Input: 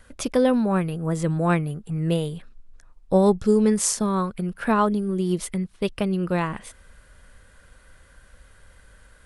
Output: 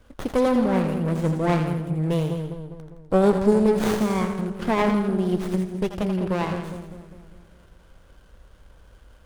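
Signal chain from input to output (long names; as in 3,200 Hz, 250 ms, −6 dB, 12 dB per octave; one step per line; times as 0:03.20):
echo with a time of its own for lows and highs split 630 Hz, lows 202 ms, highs 83 ms, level −6.5 dB
windowed peak hold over 17 samples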